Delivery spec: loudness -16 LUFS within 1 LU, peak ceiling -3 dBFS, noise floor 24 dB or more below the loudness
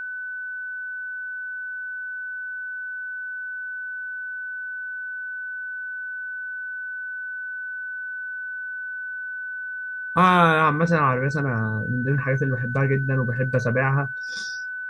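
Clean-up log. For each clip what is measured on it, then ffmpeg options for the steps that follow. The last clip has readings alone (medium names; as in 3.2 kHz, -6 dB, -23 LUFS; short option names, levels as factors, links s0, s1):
steady tone 1.5 kHz; tone level -29 dBFS; loudness -25.5 LUFS; peak level -5.0 dBFS; loudness target -16.0 LUFS
-> -af "bandreject=f=1500:w=30"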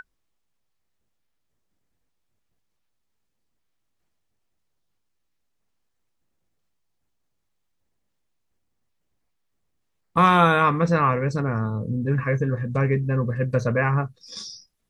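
steady tone not found; loudness -22.0 LUFS; peak level -5.5 dBFS; loudness target -16.0 LUFS
-> -af "volume=2,alimiter=limit=0.708:level=0:latency=1"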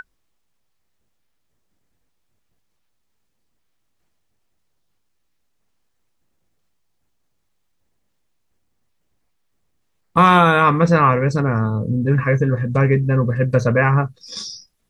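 loudness -16.5 LUFS; peak level -3.0 dBFS; noise floor -68 dBFS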